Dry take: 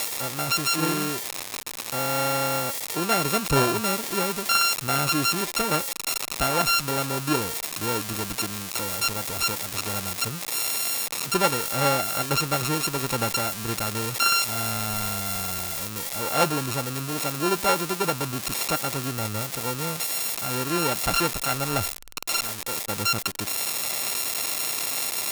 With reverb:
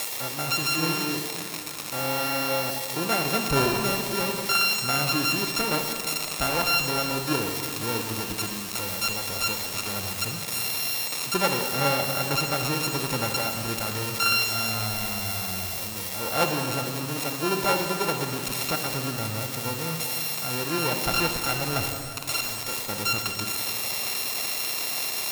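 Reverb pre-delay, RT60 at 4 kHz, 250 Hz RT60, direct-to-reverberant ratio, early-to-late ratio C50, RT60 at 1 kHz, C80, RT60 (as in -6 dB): 35 ms, 2.3 s, 2.8 s, 4.0 dB, 4.5 dB, 2.4 s, 5.5 dB, 2.5 s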